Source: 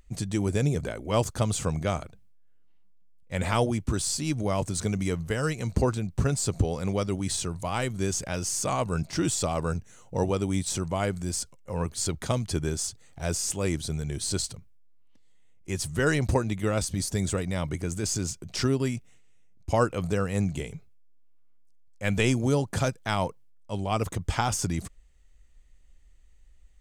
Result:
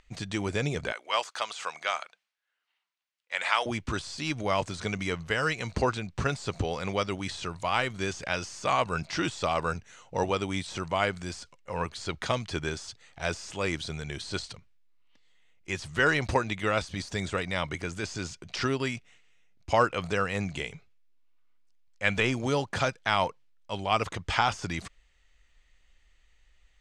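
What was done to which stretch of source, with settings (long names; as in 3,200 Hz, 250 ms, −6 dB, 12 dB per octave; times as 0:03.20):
0:00.92–0:03.66: high-pass filter 840 Hz
whole clip: de-essing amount 80%; low-pass filter 4,000 Hz 12 dB per octave; tilt shelving filter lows −8.5 dB, about 640 Hz; level +1 dB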